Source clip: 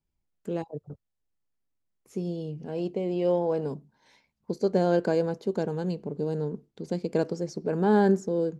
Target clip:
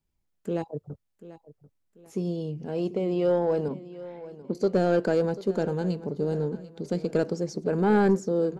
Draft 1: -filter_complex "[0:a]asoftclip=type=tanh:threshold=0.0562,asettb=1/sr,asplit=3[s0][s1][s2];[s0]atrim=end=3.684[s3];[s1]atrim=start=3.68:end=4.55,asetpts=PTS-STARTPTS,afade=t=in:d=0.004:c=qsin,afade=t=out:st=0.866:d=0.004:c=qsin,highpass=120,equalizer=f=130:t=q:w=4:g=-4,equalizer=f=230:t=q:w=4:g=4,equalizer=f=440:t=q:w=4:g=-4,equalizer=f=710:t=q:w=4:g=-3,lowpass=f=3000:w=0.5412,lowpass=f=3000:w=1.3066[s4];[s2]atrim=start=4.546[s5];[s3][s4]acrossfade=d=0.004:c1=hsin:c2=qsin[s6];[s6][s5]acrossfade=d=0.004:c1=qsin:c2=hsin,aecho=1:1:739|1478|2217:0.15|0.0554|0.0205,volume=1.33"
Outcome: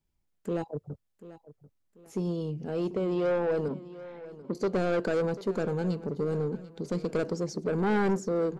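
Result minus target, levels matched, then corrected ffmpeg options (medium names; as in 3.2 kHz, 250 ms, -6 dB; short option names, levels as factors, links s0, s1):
saturation: distortion +9 dB
-filter_complex "[0:a]asoftclip=type=tanh:threshold=0.158,asettb=1/sr,asplit=3[s0][s1][s2];[s0]atrim=end=3.684[s3];[s1]atrim=start=3.68:end=4.55,asetpts=PTS-STARTPTS,afade=t=in:d=0.004:c=qsin,afade=t=out:st=0.866:d=0.004:c=qsin,highpass=120,equalizer=f=130:t=q:w=4:g=-4,equalizer=f=230:t=q:w=4:g=4,equalizer=f=440:t=q:w=4:g=-4,equalizer=f=710:t=q:w=4:g=-3,lowpass=f=3000:w=0.5412,lowpass=f=3000:w=1.3066[s4];[s2]atrim=start=4.546[s5];[s3][s4]acrossfade=d=0.004:c1=hsin:c2=qsin[s6];[s6][s5]acrossfade=d=0.004:c1=qsin:c2=hsin,aecho=1:1:739|1478|2217:0.15|0.0554|0.0205,volume=1.33"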